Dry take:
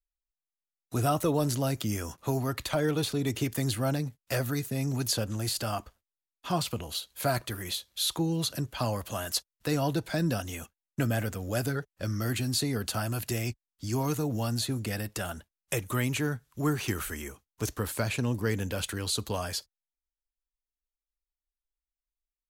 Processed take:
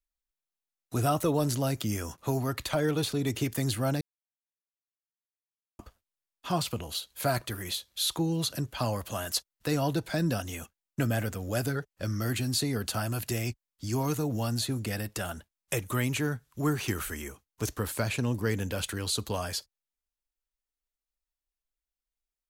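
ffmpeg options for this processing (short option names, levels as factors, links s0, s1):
-filter_complex "[0:a]asplit=3[s0][s1][s2];[s0]atrim=end=4.01,asetpts=PTS-STARTPTS,afade=t=out:st=4.006:d=0.004:c=hsin[s3];[s1]atrim=start=4.01:end=5.79,asetpts=PTS-STARTPTS,volume=0[s4];[s2]atrim=start=5.79,asetpts=PTS-STARTPTS,afade=t=in:d=0.004:c=hsin[s5];[s3][s4][s5]concat=n=3:v=0:a=1"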